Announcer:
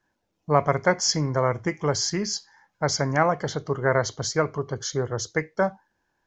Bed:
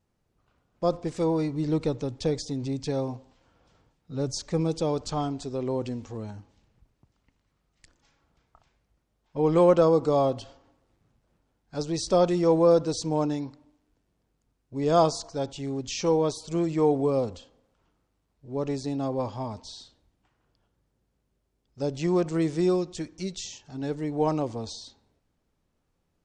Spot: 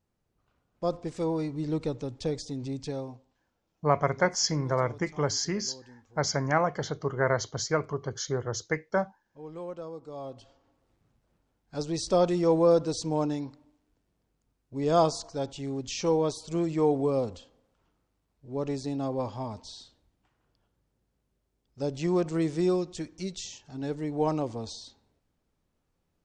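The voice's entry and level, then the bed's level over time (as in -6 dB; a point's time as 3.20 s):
3.35 s, -4.0 dB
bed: 2.84 s -4 dB
3.68 s -20 dB
10.05 s -20 dB
10.87 s -2 dB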